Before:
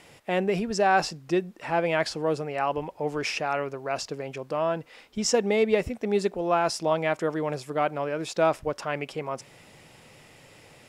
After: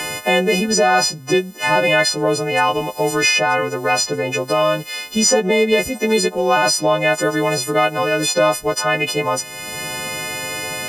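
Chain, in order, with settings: frequency quantiser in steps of 3 st; added harmonics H 5 -41 dB, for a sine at -6 dBFS; three-band squash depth 70%; gain +8 dB

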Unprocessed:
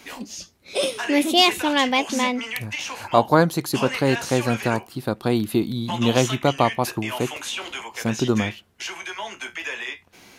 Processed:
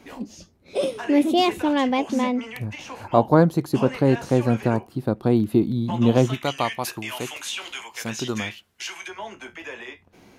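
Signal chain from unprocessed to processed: tilt shelf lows +7.5 dB, about 1100 Hz, from 6.33 s lows -4 dB, from 9.07 s lows +7 dB; gain -4 dB

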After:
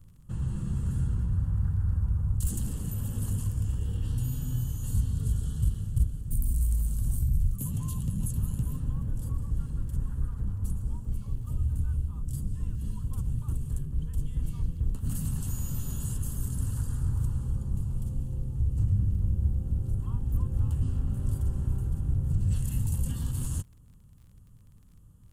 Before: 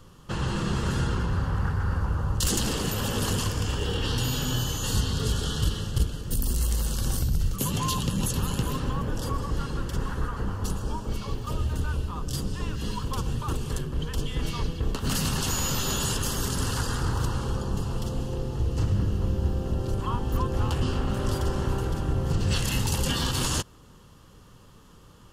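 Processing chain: EQ curve 110 Hz 0 dB, 260 Hz -10 dB, 390 Hz -19 dB, 5300 Hz -25 dB, 8400 Hz -7 dB; crackle 34/s -51 dBFS

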